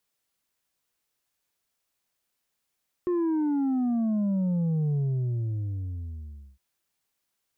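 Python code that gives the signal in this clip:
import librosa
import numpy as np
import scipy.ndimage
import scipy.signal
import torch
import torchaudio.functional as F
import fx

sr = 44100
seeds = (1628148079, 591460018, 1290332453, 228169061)

y = fx.sub_drop(sr, level_db=-23.5, start_hz=360.0, length_s=3.51, drive_db=4, fade_s=1.64, end_hz=65.0)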